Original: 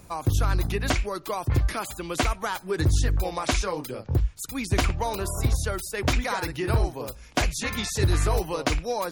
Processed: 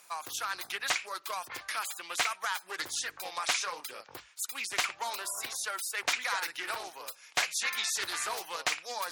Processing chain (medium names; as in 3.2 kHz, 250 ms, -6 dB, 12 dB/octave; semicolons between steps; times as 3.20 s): high-pass 1.2 kHz 12 dB/octave; reverse; upward compressor, threshold -39 dBFS; reverse; loudspeaker Doppler distortion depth 0.26 ms